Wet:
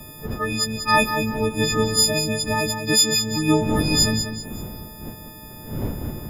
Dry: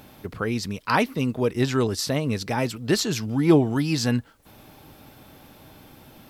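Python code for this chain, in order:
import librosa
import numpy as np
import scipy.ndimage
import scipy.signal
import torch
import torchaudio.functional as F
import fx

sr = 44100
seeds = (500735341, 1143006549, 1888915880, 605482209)

y = fx.freq_snap(x, sr, grid_st=6)
y = fx.dmg_wind(y, sr, seeds[0], corner_hz=230.0, level_db=-31.0)
y = fx.echo_feedback(y, sr, ms=191, feedback_pct=36, wet_db=-8.5)
y = y * librosa.db_to_amplitude(-2.0)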